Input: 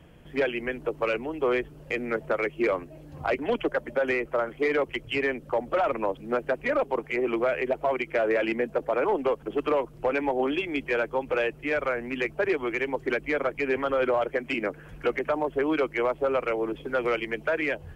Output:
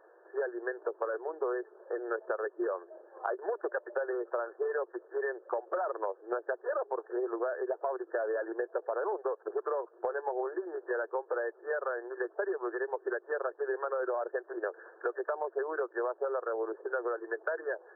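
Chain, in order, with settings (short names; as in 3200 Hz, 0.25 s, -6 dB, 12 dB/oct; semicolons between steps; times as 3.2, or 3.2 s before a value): brick-wall FIR band-pass 340–1800 Hz; compressor, threshold -30 dBFS, peak gain reduction 9 dB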